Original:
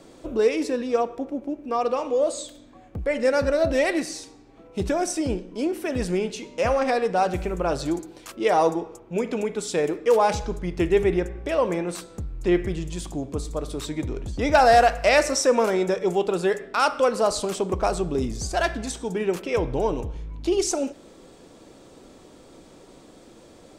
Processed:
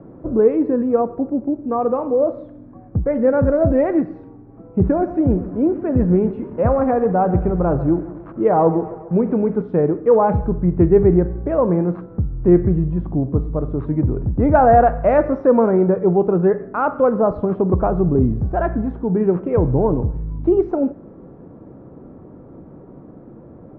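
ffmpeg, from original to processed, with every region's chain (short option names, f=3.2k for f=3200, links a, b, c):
-filter_complex "[0:a]asettb=1/sr,asplit=3[a][b][c];[a]atrim=end=4.834[d];[b]atrim=start=4.83:end=9.62,asetpts=PTS-STARTPTS,afade=t=in:d=0.004:c=qsin,afade=t=out:st=4.786:d=0.004:c=qsin,acrusher=bits=6:mix=0:aa=0.5,aecho=1:1:136|272|408|544|680:0.178|0.0996|0.0558|0.0312|0.0175,atrim=end_sample=211239[e];[c]atrim=start=9.616[f];[d][e]acrossfade=d=0.004:c1=hsin:c2=qsin[g];[g][f]acrossfade=d=0.004:c1=qsin:c2=hsin,lowpass=f=1.4k:w=0.5412,lowpass=f=1.4k:w=1.3066,equalizer=f=130:w=0.51:g=14,volume=1.5dB"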